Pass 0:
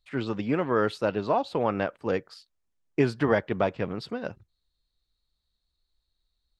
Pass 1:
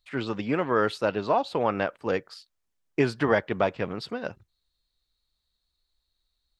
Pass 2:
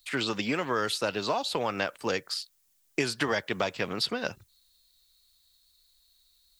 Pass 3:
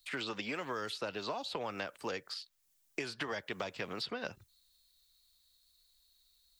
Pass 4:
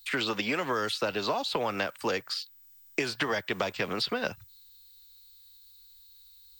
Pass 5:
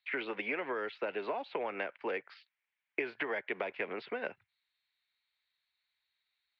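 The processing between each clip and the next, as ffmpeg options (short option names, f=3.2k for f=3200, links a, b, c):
-af "lowshelf=f=490:g=-5,volume=3dB"
-filter_complex "[0:a]acrossover=split=150|4500[a][b][c];[a]acompressor=threshold=-48dB:ratio=4[d];[b]acompressor=threshold=-30dB:ratio=4[e];[c]acompressor=threshold=-51dB:ratio=4[f];[d][e][f]amix=inputs=3:normalize=0,crystalizer=i=6:c=0,volume=1.5dB"
-filter_complex "[0:a]acrossover=split=380|4700[a][b][c];[a]acompressor=threshold=-41dB:ratio=4[d];[b]acompressor=threshold=-32dB:ratio=4[e];[c]acompressor=threshold=-52dB:ratio=4[f];[d][e][f]amix=inputs=3:normalize=0,volume=-4.5dB"
-filter_complex "[0:a]acrossover=split=150|830|3000[a][b][c][d];[b]aeval=exprs='val(0)*gte(abs(val(0)),0.00126)':c=same[e];[a][e][c][d]amix=inputs=4:normalize=0,aeval=exprs='val(0)+0.000794*sin(2*PI*16000*n/s)':c=same,volume=9dB"
-af "highpass=310,equalizer=f=400:t=q:w=4:g=4,equalizer=f=1.2k:t=q:w=4:g=-6,equalizer=f=2.2k:t=q:w=4:g=6,lowpass=f=2.5k:w=0.5412,lowpass=f=2.5k:w=1.3066,volume=-6dB"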